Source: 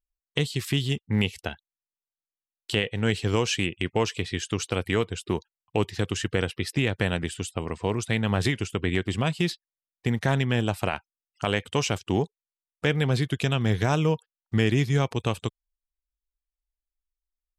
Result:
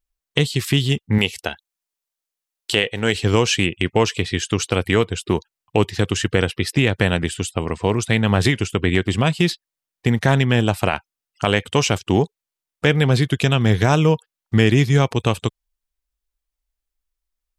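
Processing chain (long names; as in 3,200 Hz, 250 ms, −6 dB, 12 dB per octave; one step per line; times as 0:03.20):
0:01.18–0:03.15: bass and treble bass −8 dB, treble +3 dB
level +7.5 dB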